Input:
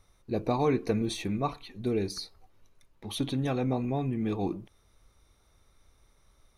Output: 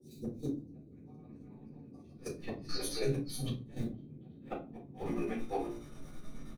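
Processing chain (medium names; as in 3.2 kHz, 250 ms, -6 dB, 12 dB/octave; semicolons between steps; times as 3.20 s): companding laws mixed up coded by mu; granulator 121 ms, grains 24 per s, spray 503 ms, pitch spread up and down by 0 st; feedback comb 58 Hz, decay 0.32 s, harmonics all, mix 90%; three bands offset in time highs, lows, mids 150/650 ms, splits 320/4800 Hz; square tremolo 9.3 Hz, depth 60%, duty 70%; inverted gate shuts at -35 dBFS, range -39 dB; band noise 77–310 Hz -65 dBFS; bass shelf 190 Hz -8 dB; reverberation RT60 0.30 s, pre-delay 4 ms, DRR -6.5 dB; endings held to a fixed fall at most 260 dB/s; trim +6 dB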